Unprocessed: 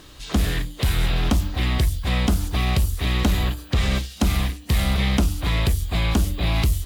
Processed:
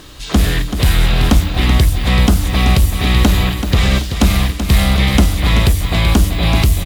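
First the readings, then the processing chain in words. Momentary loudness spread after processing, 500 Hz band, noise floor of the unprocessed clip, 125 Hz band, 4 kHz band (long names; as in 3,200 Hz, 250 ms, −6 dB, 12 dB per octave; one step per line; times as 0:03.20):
3 LU, +8.5 dB, −42 dBFS, +8.5 dB, +8.5 dB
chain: repeating echo 382 ms, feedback 41%, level −8.5 dB
level +8 dB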